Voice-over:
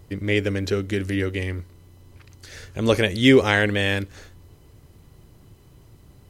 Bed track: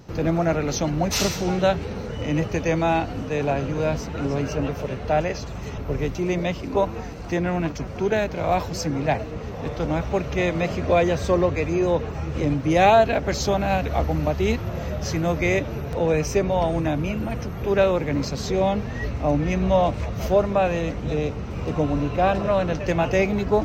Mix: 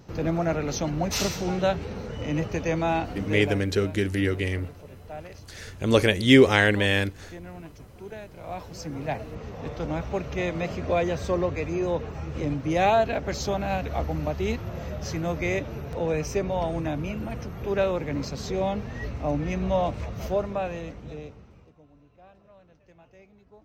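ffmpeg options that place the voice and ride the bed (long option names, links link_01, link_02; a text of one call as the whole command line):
ffmpeg -i stem1.wav -i stem2.wav -filter_complex "[0:a]adelay=3050,volume=-0.5dB[link_01];[1:a]volume=8.5dB,afade=type=out:start_time=3.25:duration=0.38:silence=0.199526,afade=type=in:start_time=8.34:duration=1.08:silence=0.237137,afade=type=out:start_time=20.05:duration=1.68:silence=0.0398107[link_02];[link_01][link_02]amix=inputs=2:normalize=0" out.wav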